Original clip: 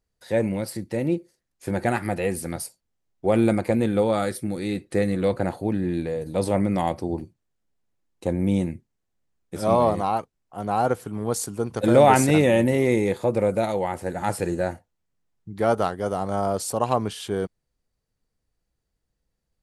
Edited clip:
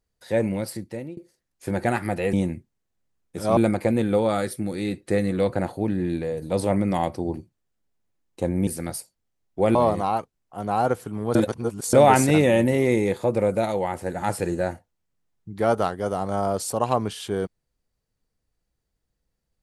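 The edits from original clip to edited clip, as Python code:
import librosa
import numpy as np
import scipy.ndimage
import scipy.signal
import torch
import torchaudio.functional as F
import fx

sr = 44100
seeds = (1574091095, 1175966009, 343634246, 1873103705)

y = fx.edit(x, sr, fx.fade_out_to(start_s=0.7, length_s=0.47, floor_db=-23.5),
    fx.swap(start_s=2.33, length_s=1.08, other_s=8.51, other_length_s=1.24),
    fx.reverse_span(start_s=11.35, length_s=0.58), tone=tone)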